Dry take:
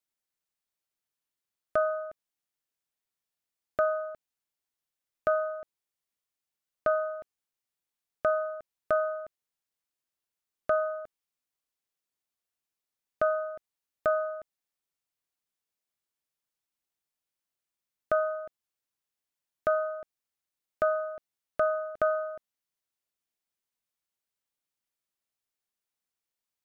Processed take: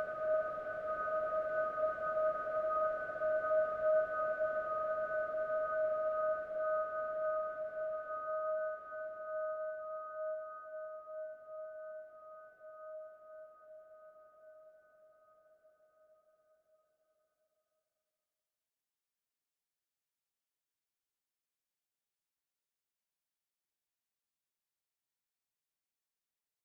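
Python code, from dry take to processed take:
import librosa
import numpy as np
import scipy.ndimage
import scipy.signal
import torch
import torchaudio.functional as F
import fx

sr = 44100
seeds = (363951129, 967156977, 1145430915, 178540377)

y = fx.paulstretch(x, sr, seeds[0], factor=20.0, window_s=1.0, from_s=1.66)
y = y * librosa.db_to_amplitude(-6.0)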